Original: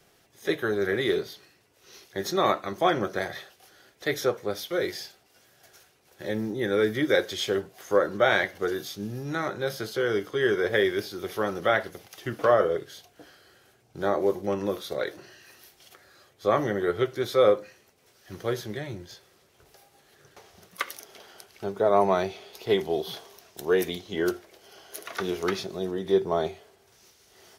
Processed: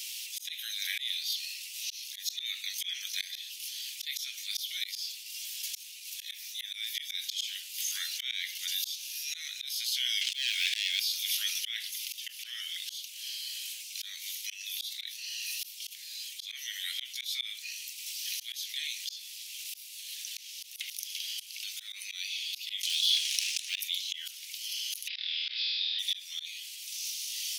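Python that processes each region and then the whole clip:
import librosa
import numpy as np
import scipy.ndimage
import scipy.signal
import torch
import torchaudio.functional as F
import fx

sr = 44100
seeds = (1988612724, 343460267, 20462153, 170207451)

y = fx.chain(x, sr, fx.bandpass_edges(low_hz=270.0, high_hz=4000.0),
    fx.leveller(passes=3), at=(10.21, 11.0))
y = fx.chain(y, sr, fx.lowpass(hz=10000.0, slope=24),
    fx.leveller(passes=2),
    fx.band_squash(depth_pct=100), at=(22.83, 23.8))
y = fx.chain(y, sr, fx.cheby_ripple(hz=5100.0, ripple_db=3),
    fx.room_flutter(wall_m=4.3, rt60_s=0.94), at=(25.08, 25.99))
y = scipy.signal.sosfilt(scipy.signal.butter(8, 2500.0, 'highpass', fs=sr, output='sos'), y)
y = fx.auto_swell(y, sr, attack_ms=707.0)
y = fx.env_flatten(y, sr, amount_pct=50)
y = F.gain(torch.from_numpy(y), 10.5).numpy()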